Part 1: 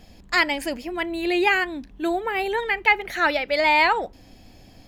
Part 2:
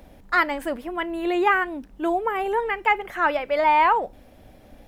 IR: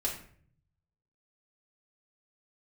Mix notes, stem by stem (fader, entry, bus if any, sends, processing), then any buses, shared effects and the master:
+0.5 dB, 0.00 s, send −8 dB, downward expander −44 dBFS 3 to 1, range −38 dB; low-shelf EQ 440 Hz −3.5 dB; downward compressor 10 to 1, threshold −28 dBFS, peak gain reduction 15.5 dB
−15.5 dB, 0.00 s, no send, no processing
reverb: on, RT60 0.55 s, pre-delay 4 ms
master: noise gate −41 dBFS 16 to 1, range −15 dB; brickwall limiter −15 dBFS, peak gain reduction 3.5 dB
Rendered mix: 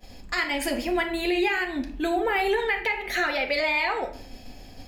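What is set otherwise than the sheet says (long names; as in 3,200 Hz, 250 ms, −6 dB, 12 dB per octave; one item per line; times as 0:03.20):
stem 1: send −8 dB → −0.5 dB
master: missing noise gate −41 dBFS 16 to 1, range −15 dB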